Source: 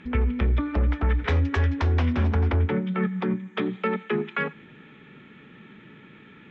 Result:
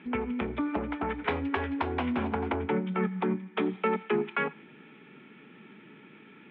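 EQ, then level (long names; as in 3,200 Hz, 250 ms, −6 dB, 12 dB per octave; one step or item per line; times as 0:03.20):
dynamic equaliser 890 Hz, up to +4 dB, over −43 dBFS, Q 1.4
loudspeaker in its box 230–3,100 Hz, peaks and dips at 540 Hz −5 dB, 1,200 Hz −4 dB, 1,800 Hz −6 dB
0.0 dB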